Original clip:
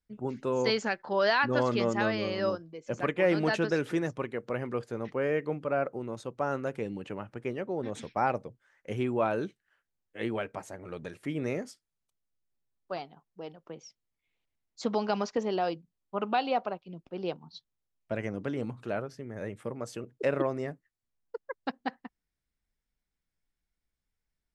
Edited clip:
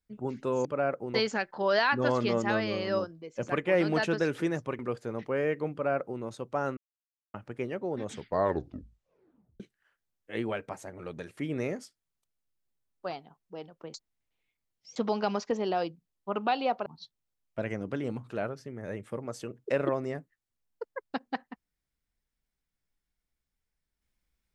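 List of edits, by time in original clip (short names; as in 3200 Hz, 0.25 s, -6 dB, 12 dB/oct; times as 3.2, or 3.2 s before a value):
4.3–4.65 cut
5.58–6.07 copy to 0.65
6.63–7.2 mute
7.93 tape stop 1.53 s
13.8–14.82 reverse
16.72–17.39 cut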